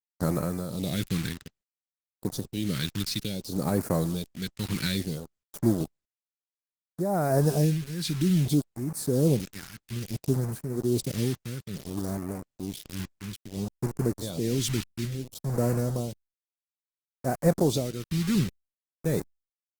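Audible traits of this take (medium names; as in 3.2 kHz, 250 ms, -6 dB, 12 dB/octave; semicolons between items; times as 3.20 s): a quantiser's noise floor 6-bit, dither none; tremolo triangle 1.1 Hz, depth 70%; phasing stages 2, 0.59 Hz, lowest notch 570–3200 Hz; Opus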